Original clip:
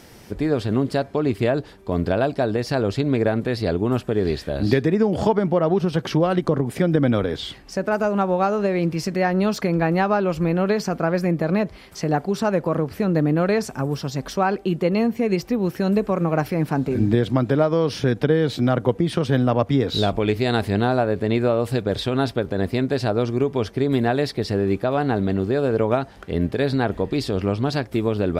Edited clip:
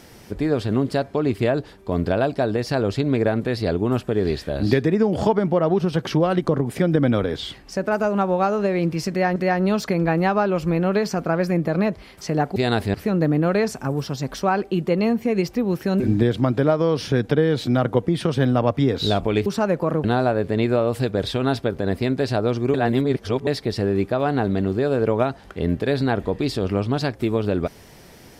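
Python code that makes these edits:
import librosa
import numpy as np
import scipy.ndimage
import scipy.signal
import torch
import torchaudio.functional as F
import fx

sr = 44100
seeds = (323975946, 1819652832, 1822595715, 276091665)

y = fx.edit(x, sr, fx.repeat(start_s=9.1, length_s=0.26, count=2),
    fx.swap(start_s=12.3, length_s=0.58, other_s=20.38, other_length_s=0.38),
    fx.cut(start_s=15.94, length_s=0.98),
    fx.reverse_span(start_s=23.46, length_s=0.73), tone=tone)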